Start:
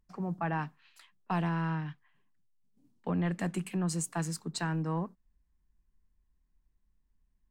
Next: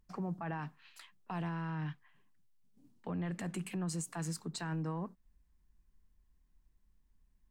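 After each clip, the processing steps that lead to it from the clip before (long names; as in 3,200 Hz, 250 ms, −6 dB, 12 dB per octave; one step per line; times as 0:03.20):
in parallel at −1.5 dB: downward compressor, threshold −42 dBFS, peak gain reduction 14 dB
on the sum: brickwall limiter −28.5 dBFS, peak gain reduction 9 dB
level −2.5 dB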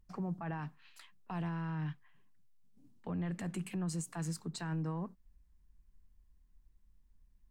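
low-shelf EQ 140 Hz +7 dB
level −2 dB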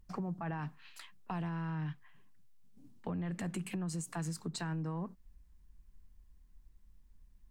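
downward compressor, threshold −40 dBFS, peak gain reduction 7 dB
level +5 dB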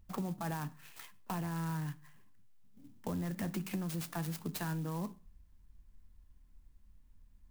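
on a send at −11 dB: convolution reverb RT60 0.40 s, pre-delay 3 ms
on the sum: converter with an unsteady clock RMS 0.054 ms
level +1 dB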